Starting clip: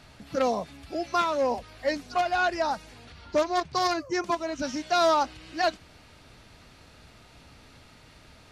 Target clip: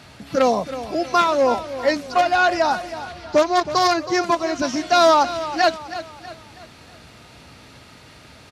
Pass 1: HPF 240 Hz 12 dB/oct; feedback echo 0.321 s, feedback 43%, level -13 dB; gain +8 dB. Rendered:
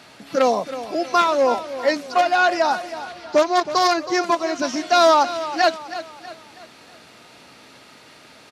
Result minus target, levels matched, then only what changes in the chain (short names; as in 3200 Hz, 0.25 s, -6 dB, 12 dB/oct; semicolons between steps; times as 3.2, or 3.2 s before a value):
125 Hz band -8.5 dB
change: HPF 77 Hz 12 dB/oct